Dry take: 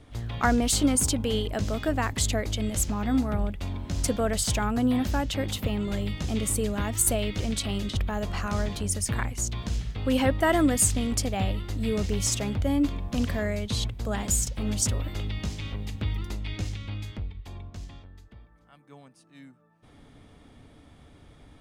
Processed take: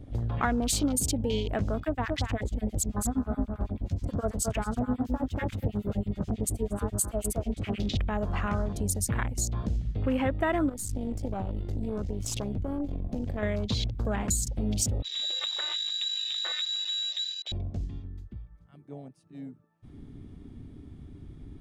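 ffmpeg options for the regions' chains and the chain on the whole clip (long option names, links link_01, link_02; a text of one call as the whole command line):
ffmpeg -i in.wav -filter_complex "[0:a]asettb=1/sr,asplit=3[link_01][link_02][link_03];[link_01]atrim=end=1.804[link_04];[link_02]atrim=start=1.8:end=7.8,asetpts=PTS-STARTPTS,afade=type=in:duration=0.004:curve=qsin,afade=type=out:start_time=5.996:duration=0.004:curve=qsin,aecho=1:1:237:0.562,atrim=end_sample=264600,acrossover=split=1400[link_05][link_06];[link_05]aeval=exprs='val(0)*(1-1/2+1/2*cos(2*PI*9.3*n/s))':channel_layout=same[link_07];[link_06]aeval=exprs='val(0)*(1-1/2-1/2*cos(2*PI*9.3*n/s))':channel_layout=same[link_08];[link_07][link_08]amix=inputs=2:normalize=0[link_09];[link_03]atrim=start=7.796[link_10];[link_04][link_09]acrossfade=duration=0.004:curve1=hsin:curve2=qsin[link_11];[link_11][link_10]acrossfade=duration=0.004:curve1=qsin:curve2=hsin,asettb=1/sr,asplit=3[link_12][link_13][link_14];[link_12]atrim=end=10.694[link_15];[link_13]atrim=start=10.69:end=13.43,asetpts=PTS-STARTPTS,afade=type=in:duration=0.004:curve=qsin,afade=type=out:start_time=2.736:duration=0.004:curve=qsin,acompressor=threshold=-27dB:ratio=12:attack=3.2:release=140:knee=1:detection=peak,aeval=exprs='(tanh(17.8*val(0)+0.75)-tanh(0.75))/17.8':channel_layout=same[link_16];[link_14]atrim=start=13.426[link_17];[link_15][link_16]acrossfade=duration=0.004:curve1=hsin:curve2=qsin[link_18];[link_18][link_17]acrossfade=duration=0.004:curve1=qsin:curve2=hsin,asettb=1/sr,asplit=3[link_19][link_20][link_21];[link_19]atrim=end=15.024[link_22];[link_20]atrim=start=15.02:end=17.52,asetpts=PTS-STARTPTS,afade=type=in:duration=0.004:curve=qsin,afade=type=out:start_time=2.496:duration=0.004:curve=qsin,highpass=frequency=74:width=0.5412,highpass=frequency=74:width=1.3066,lowpass=frequency=3400:width_type=q:width=0.5098,lowpass=frequency=3400:width_type=q:width=0.6013,lowpass=frequency=3400:width_type=q:width=0.9,lowpass=frequency=3400:width_type=q:width=2.563,afreqshift=-4000,acompressor=threshold=-34dB:ratio=4:attack=3.2:release=140:knee=1:detection=peak[link_23];[link_21]atrim=start=17.516[link_24];[link_22][link_23]acrossfade=duration=0.004:curve1=hsin:curve2=qsin[link_25];[link_25][link_24]acrossfade=duration=0.004:curve1=qsin:curve2=hsin,acompressor=threshold=-36dB:ratio=3,afwtdn=0.00501,volume=8dB" out.wav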